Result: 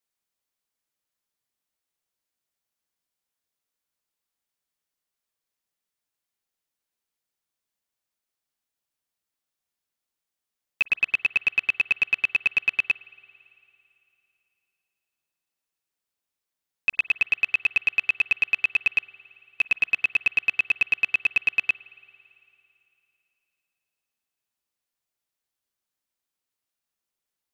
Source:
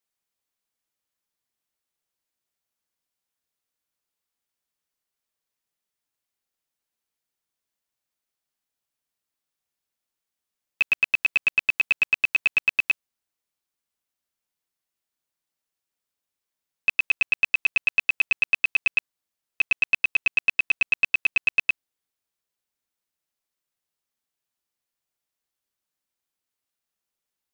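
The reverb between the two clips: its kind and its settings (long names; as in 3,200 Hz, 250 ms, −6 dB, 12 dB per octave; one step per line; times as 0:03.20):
spring reverb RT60 3 s, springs 46 ms, chirp 30 ms, DRR 18.5 dB
level −1 dB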